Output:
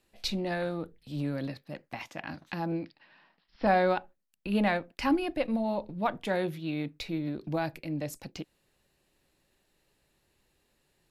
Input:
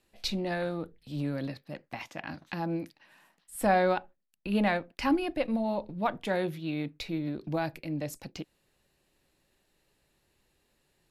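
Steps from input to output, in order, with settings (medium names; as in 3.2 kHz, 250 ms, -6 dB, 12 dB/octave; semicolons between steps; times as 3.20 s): 2.72–3.67 s: steep low-pass 5.3 kHz 96 dB/octave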